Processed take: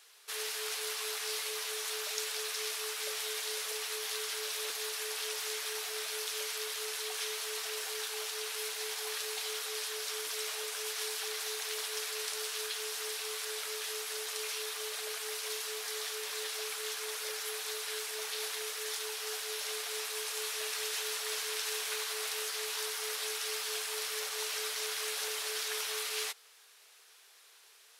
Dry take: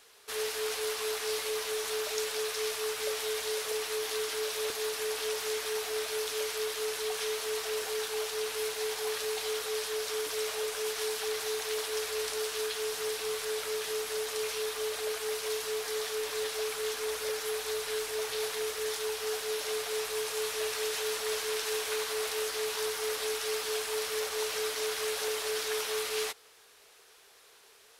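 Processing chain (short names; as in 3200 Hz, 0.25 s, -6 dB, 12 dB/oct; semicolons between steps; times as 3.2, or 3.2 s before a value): HPF 1400 Hz 6 dB/oct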